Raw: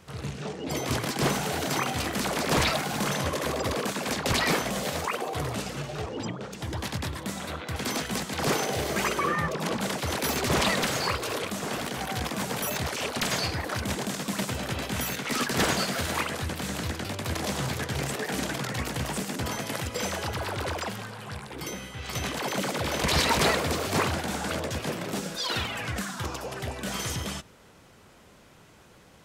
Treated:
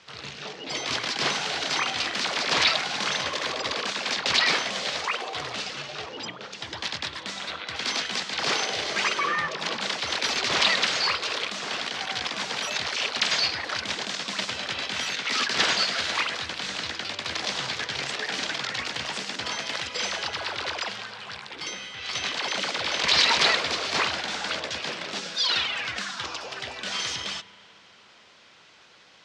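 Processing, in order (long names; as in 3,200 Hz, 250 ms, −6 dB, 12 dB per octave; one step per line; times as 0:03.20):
low-pass filter 4,800 Hz 24 dB per octave
spectral tilt +4.5 dB per octave
spring reverb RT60 3.4 s, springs 35 ms, chirp 70 ms, DRR 18 dB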